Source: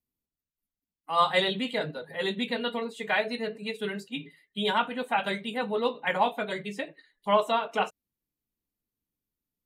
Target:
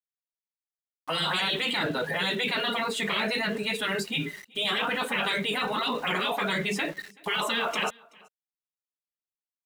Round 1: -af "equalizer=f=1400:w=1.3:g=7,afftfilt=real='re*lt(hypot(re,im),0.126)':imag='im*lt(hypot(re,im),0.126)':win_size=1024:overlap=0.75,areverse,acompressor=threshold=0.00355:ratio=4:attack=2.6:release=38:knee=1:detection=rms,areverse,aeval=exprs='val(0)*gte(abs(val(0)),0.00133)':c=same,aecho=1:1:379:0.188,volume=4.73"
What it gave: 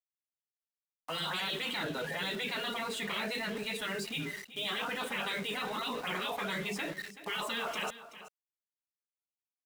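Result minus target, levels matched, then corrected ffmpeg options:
compression: peak gain reduction +8 dB; echo-to-direct +11.5 dB
-af "equalizer=f=1400:w=1.3:g=7,afftfilt=real='re*lt(hypot(re,im),0.126)':imag='im*lt(hypot(re,im),0.126)':win_size=1024:overlap=0.75,areverse,acompressor=threshold=0.0119:ratio=4:attack=2.6:release=38:knee=1:detection=rms,areverse,aeval=exprs='val(0)*gte(abs(val(0)),0.00133)':c=same,aecho=1:1:379:0.0501,volume=4.73"

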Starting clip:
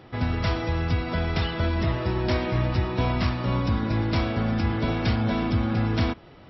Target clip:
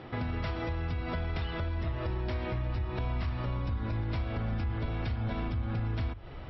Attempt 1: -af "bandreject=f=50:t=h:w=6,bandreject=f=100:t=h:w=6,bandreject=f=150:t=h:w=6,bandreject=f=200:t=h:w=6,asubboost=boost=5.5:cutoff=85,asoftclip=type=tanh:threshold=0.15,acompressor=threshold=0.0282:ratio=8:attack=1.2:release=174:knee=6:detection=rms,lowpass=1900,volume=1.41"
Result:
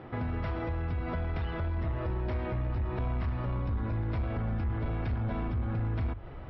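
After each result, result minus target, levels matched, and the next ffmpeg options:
saturation: distortion +15 dB; 4 kHz band -8.5 dB
-af "bandreject=f=50:t=h:w=6,bandreject=f=100:t=h:w=6,bandreject=f=150:t=h:w=6,bandreject=f=200:t=h:w=6,asubboost=boost=5.5:cutoff=85,asoftclip=type=tanh:threshold=0.473,acompressor=threshold=0.0282:ratio=8:attack=1.2:release=174:knee=6:detection=rms,lowpass=1900,volume=1.41"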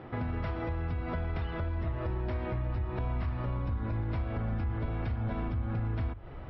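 4 kHz band -8.5 dB
-af "bandreject=f=50:t=h:w=6,bandreject=f=100:t=h:w=6,bandreject=f=150:t=h:w=6,bandreject=f=200:t=h:w=6,asubboost=boost=5.5:cutoff=85,asoftclip=type=tanh:threshold=0.473,acompressor=threshold=0.0282:ratio=8:attack=1.2:release=174:knee=6:detection=rms,lowpass=3900,volume=1.41"

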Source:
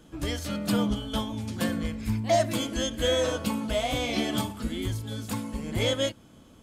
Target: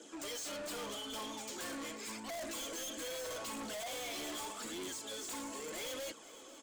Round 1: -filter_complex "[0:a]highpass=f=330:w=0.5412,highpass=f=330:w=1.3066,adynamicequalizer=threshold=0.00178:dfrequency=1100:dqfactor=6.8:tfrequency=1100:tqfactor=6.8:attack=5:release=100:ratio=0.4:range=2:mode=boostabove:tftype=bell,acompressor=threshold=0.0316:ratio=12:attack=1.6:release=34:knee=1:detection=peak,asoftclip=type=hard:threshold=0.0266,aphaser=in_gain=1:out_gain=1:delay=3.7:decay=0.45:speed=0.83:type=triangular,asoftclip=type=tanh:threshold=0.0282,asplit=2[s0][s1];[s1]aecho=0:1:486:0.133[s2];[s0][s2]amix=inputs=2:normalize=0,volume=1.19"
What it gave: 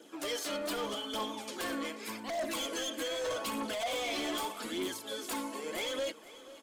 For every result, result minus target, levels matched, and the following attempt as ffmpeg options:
compression: peak gain reduction +13.5 dB; saturation: distortion -11 dB; 8 kHz band -5.0 dB
-filter_complex "[0:a]highpass=f=330:w=0.5412,highpass=f=330:w=1.3066,adynamicequalizer=threshold=0.00178:dfrequency=1100:dqfactor=6.8:tfrequency=1100:tqfactor=6.8:attack=5:release=100:ratio=0.4:range=2:mode=boostabove:tftype=bell,asoftclip=type=hard:threshold=0.0266,aphaser=in_gain=1:out_gain=1:delay=3.7:decay=0.45:speed=0.83:type=triangular,asoftclip=type=tanh:threshold=0.0282,asplit=2[s0][s1];[s1]aecho=0:1:486:0.133[s2];[s0][s2]amix=inputs=2:normalize=0,volume=1.19"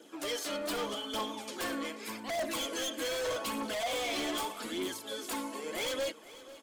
saturation: distortion -9 dB; 8 kHz band -5.0 dB
-filter_complex "[0:a]highpass=f=330:w=0.5412,highpass=f=330:w=1.3066,adynamicequalizer=threshold=0.00178:dfrequency=1100:dqfactor=6.8:tfrequency=1100:tqfactor=6.8:attack=5:release=100:ratio=0.4:range=2:mode=boostabove:tftype=bell,asoftclip=type=hard:threshold=0.0266,aphaser=in_gain=1:out_gain=1:delay=3.7:decay=0.45:speed=0.83:type=triangular,asoftclip=type=tanh:threshold=0.0075,asplit=2[s0][s1];[s1]aecho=0:1:486:0.133[s2];[s0][s2]amix=inputs=2:normalize=0,volume=1.19"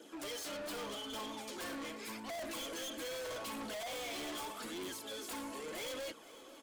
8 kHz band -4.0 dB
-filter_complex "[0:a]highpass=f=330:w=0.5412,highpass=f=330:w=1.3066,adynamicequalizer=threshold=0.00178:dfrequency=1100:dqfactor=6.8:tfrequency=1100:tqfactor=6.8:attack=5:release=100:ratio=0.4:range=2:mode=boostabove:tftype=bell,lowpass=f=7500:t=q:w=3.3,asoftclip=type=hard:threshold=0.0266,aphaser=in_gain=1:out_gain=1:delay=3.7:decay=0.45:speed=0.83:type=triangular,asoftclip=type=tanh:threshold=0.0075,asplit=2[s0][s1];[s1]aecho=0:1:486:0.133[s2];[s0][s2]amix=inputs=2:normalize=0,volume=1.19"

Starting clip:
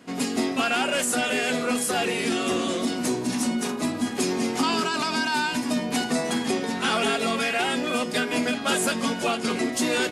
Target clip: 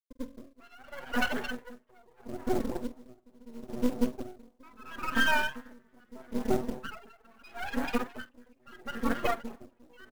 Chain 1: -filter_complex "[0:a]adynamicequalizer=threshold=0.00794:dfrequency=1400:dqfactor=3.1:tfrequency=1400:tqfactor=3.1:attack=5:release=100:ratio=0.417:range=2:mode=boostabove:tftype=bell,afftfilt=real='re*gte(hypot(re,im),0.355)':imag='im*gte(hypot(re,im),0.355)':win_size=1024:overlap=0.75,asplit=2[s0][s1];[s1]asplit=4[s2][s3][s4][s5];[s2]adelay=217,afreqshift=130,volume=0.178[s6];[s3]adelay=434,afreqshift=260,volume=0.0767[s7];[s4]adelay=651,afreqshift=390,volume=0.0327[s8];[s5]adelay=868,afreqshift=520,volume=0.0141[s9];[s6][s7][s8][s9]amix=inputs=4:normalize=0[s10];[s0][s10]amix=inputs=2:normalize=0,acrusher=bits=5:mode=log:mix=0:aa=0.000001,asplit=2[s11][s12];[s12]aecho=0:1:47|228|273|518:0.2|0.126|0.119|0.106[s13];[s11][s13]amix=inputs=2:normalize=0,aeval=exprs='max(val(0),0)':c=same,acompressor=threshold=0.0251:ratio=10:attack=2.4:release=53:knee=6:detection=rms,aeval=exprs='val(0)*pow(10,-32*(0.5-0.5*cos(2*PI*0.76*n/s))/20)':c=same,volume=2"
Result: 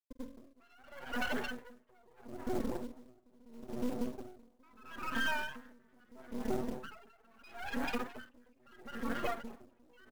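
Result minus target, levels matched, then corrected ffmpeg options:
compression: peak gain reduction +12.5 dB
-filter_complex "[0:a]adynamicequalizer=threshold=0.00794:dfrequency=1400:dqfactor=3.1:tfrequency=1400:tqfactor=3.1:attack=5:release=100:ratio=0.417:range=2:mode=boostabove:tftype=bell,afftfilt=real='re*gte(hypot(re,im),0.355)':imag='im*gte(hypot(re,im),0.355)':win_size=1024:overlap=0.75,asplit=2[s0][s1];[s1]asplit=4[s2][s3][s4][s5];[s2]adelay=217,afreqshift=130,volume=0.178[s6];[s3]adelay=434,afreqshift=260,volume=0.0767[s7];[s4]adelay=651,afreqshift=390,volume=0.0327[s8];[s5]adelay=868,afreqshift=520,volume=0.0141[s9];[s6][s7][s8][s9]amix=inputs=4:normalize=0[s10];[s0][s10]amix=inputs=2:normalize=0,acrusher=bits=5:mode=log:mix=0:aa=0.000001,asplit=2[s11][s12];[s12]aecho=0:1:47|228|273|518:0.2|0.126|0.119|0.106[s13];[s11][s13]amix=inputs=2:normalize=0,aeval=exprs='max(val(0),0)':c=same,aeval=exprs='val(0)*pow(10,-32*(0.5-0.5*cos(2*PI*0.76*n/s))/20)':c=same,volume=2"

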